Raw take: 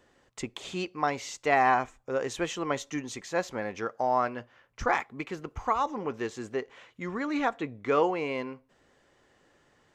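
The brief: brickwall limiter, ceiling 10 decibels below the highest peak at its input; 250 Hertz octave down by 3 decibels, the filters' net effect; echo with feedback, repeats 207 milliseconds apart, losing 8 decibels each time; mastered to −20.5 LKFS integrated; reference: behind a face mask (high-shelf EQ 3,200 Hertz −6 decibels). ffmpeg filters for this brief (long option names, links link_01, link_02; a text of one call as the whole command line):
ffmpeg -i in.wav -af "equalizer=frequency=250:width_type=o:gain=-4,alimiter=limit=-20dB:level=0:latency=1,highshelf=frequency=3200:gain=-6,aecho=1:1:207|414|621|828|1035:0.398|0.159|0.0637|0.0255|0.0102,volume=13.5dB" out.wav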